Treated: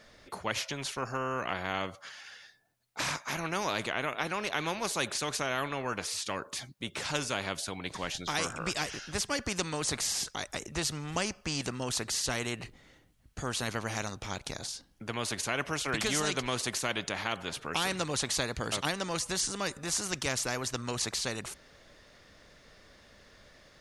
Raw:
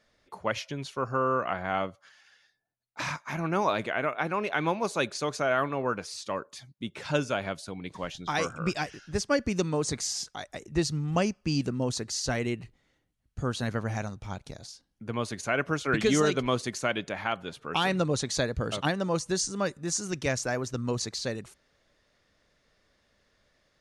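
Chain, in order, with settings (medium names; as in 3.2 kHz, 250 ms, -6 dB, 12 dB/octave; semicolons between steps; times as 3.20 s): spectrum-flattening compressor 2:1; trim -1 dB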